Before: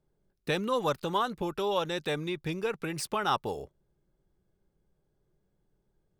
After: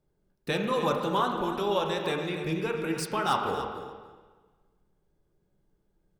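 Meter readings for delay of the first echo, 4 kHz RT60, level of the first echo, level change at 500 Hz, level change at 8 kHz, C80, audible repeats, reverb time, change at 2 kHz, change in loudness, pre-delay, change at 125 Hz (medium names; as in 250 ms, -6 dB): 284 ms, 1.3 s, -10.5 dB, +2.0 dB, +0.5 dB, 4.5 dB, 2, 1.4 s, +2.0 dB, +2.5 dB, 6 ms, +2.5 dB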